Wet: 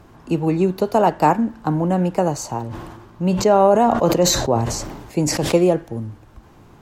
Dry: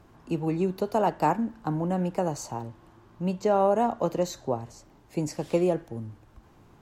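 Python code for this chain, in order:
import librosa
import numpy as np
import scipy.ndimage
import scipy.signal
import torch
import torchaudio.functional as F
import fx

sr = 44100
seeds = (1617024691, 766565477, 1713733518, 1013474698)

y = fx.sustainer(x, sr, db_per_s=43.0, at=(2.69, 5.55), fade=0.02)
y = F.gain(torch.from_numpy(y), 8.5).numpy()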